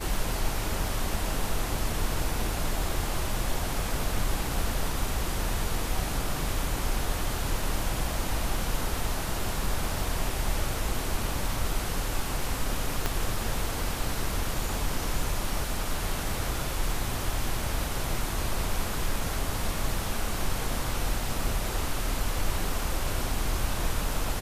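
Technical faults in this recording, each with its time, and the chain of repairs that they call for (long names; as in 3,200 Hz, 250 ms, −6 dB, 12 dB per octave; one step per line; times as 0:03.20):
0:13.06: click −11 dBFS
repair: click removal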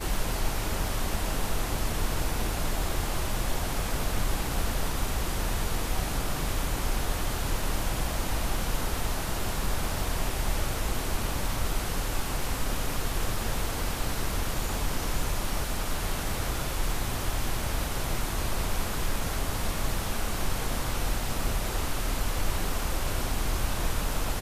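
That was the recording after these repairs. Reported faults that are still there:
0:13.06: click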